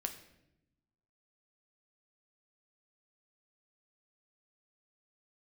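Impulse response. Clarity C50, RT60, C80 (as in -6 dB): 11.0 dB, 0.85 s, 13.0 dB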